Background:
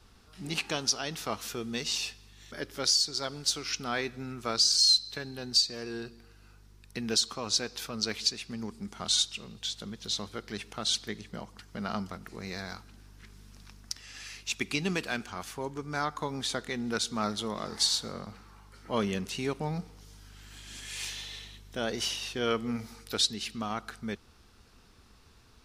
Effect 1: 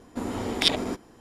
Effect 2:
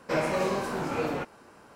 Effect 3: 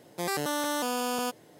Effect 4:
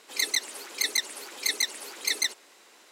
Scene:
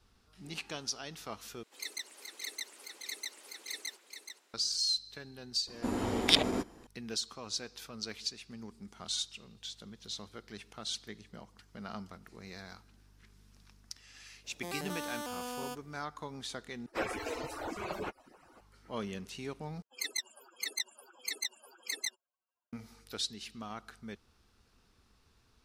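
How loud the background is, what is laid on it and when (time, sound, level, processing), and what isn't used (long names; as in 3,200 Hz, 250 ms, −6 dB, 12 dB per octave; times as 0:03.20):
background −9 dB
0:01.63: overwrite with 4 −14.5 dB + single-tap delay 426 ms −7 dB
0:05.67: mix in 1 −2.5 dB
0:14.44: mix in 3 −10.5 dB
0:16.86: overwrite with 2 −2 dB + harmonic-percussive split with one part muted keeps percussive
0:19.82: overwrite with 4 −6 dB + spectral dynamics exaggerated over time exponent 3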